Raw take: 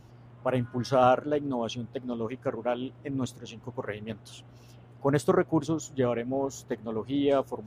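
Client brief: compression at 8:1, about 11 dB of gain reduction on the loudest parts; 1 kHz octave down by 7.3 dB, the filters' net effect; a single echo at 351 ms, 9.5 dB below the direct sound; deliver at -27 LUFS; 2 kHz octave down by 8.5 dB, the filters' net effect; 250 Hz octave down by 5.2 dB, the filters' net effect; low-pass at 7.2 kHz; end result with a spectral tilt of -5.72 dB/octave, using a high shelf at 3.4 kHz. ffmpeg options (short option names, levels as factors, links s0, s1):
-af "lowpass=7200,equalizer=f=250:t=o:g=-6,equalizer=f=1000:t=o:g=-9,equalizer=f=2000:t=o:g=-9,highshelf=f=3400:g=3,acompressor=threshold=0.02:ratio=8,aecho=1:1:351:0.335,volume=4.47"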